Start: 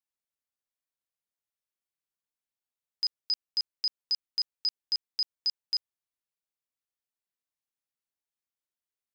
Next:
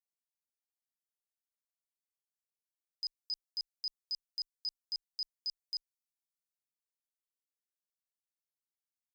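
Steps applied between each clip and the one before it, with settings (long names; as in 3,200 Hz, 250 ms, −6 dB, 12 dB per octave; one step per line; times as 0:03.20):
transient designer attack −3 dB, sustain +3 dB
inverse Chebyshev band-stop filter 120–860 Hz, stop band 80 dB
level −5.5 dB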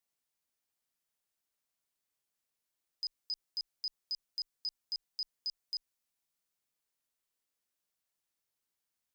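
brickwall limiter −39 dBFS, peak gain reduction 8.5 dB
level +7.5 dB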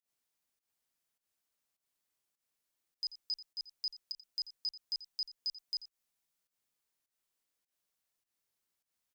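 fake sidechain pumping 102 BPM, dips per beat 1, −19 dB, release 137 ms
single-tap delay 86 ms −15 dB
level +1 dB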